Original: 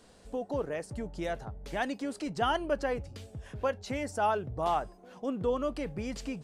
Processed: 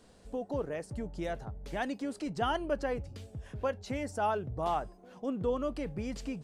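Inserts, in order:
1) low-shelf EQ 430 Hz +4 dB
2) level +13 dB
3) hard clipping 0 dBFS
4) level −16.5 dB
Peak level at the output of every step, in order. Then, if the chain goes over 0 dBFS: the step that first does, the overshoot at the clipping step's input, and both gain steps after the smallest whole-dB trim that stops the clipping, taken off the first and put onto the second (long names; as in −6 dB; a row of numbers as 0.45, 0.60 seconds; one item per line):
−15.5, −2.5, −2.5, −19.0 dBFS
no step passes full scale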